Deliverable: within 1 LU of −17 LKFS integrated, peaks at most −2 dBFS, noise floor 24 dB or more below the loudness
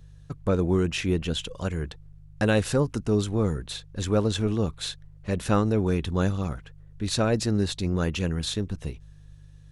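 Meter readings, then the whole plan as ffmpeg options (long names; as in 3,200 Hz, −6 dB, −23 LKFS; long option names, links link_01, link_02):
mains hum 50 Hz; hum harmonics up to 150 Hz; level of the hum −46 dBFS; integrated loudness −26.5 LKFS; sample peak −10.5 dBFS; target loudness −17.0 LKFS
→ -af "bandreject=frequency=50:width_type=h:width=4,bandreject=frequency=100:width_type=h:width=4,bandreject=frequency=150:width_type=h:width=4"
-af "volume=9.5dB,alimiter=limit=-2dB:level=0:latency=1"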